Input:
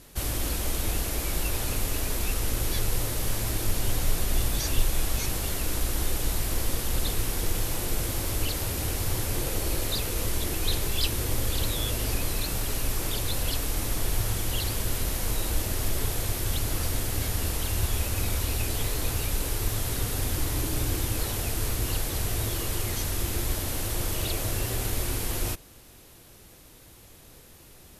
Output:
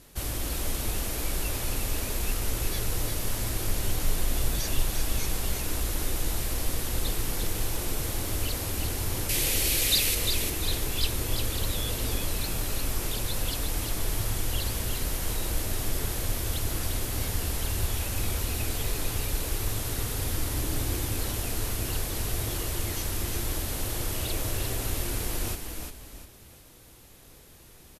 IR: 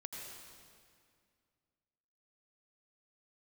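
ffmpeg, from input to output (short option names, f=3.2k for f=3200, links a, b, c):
-filter_complex "[0:a]asettb=1/sr,asplit=3[a][b][c];[a]atrim=end=9.294[d];[b]atrim=start=9.29:end=10.15,asetpts=PTS-STARTPTS,afade=t=in:d=0.004:c=qsin,afade=t=out:st=0.856:d=0.004:c=qsin,highshelf=f=1.7k:t=q:w=1.5:g=9[e];[c]atrim=start=10.146[f];[d][e]acrossfade=d=0.004:c1=hsin:c2=qsin[g];[g][f]acrossfade=d=0.004:c1=qsin:c2=hsin,asplit=5[h][i][j][k][l];[i]adelay=351,afreqshift=-36,volume=-5.5dB[m];[j]adelay=702,afreqshift=-72,volume=-15.1dB[n];[k]adelay=1053,afreqshift=-108,volume=-24.8dB[o];[l]adelay=1404,afreqshift=-144,volume=-34.4dB[p];[h][m][n][o][p]amix=inputs=5:normalize=0,volume=-2.5dB"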